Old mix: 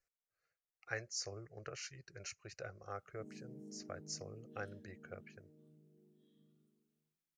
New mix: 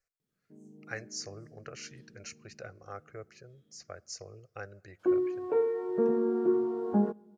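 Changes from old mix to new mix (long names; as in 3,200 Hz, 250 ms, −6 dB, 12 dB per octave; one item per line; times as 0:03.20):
speech: send on
background: entry −2.70 s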